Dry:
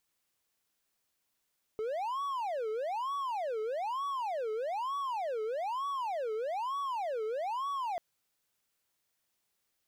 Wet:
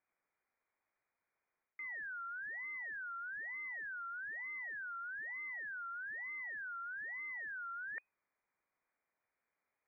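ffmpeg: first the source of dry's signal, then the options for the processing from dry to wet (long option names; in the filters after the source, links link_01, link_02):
-f lavfi -i "aevalsrc='0.0316*(1-4*abs(mod((780*t-350/(2*PI*1.1)*sin(2*PI*1.1*t))+0.25,1)-0.5))':duration=6.19:sample_rate=44100"
-af "areverse,acompressor=threshold=-43dB:ratio=6,areverse,lowpass=frequency=2100:width_type=q:width=0.5098,lowpass=frequency=2100:width_type=q:width=0.6013,lowpass=frequency=2100:width_type=q:width=0.9,lowpass=frequency=2100:width_type=q:width=2.563,afreqshift=-2500"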